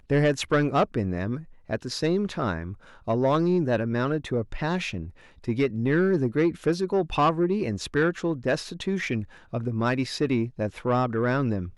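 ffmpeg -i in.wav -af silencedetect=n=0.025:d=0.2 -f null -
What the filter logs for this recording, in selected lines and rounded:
silence_start: 1.39
silence_end: 1.70 | silence_duration: 0.30
silence_start: 2.73
silence_end: 3.08 | silence_duration: 0.35
silence_start: 5.06
silence_end: 5.48 | silence_duration: 0.41
silence_start: 9.24
silence_end: 9.53 | silence_duration: 0.30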